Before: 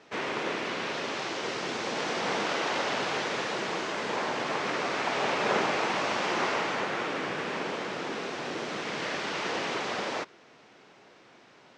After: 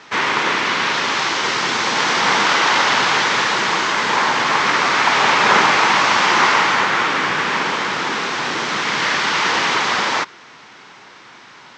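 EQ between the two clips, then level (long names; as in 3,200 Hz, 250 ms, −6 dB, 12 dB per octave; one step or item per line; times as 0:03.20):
low-shelf EQ 350 Hz +8 dB
flat-topped bell 1,400 Hz +12.5 dB
flat-topped bell 4,800 Hz +12.5 dB
+3.5 dB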